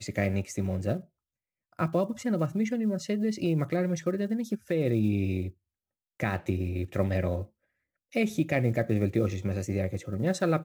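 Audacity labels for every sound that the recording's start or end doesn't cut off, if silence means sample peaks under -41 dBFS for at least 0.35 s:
1.790000	5.500000	sound
6.200000	7.440000	sound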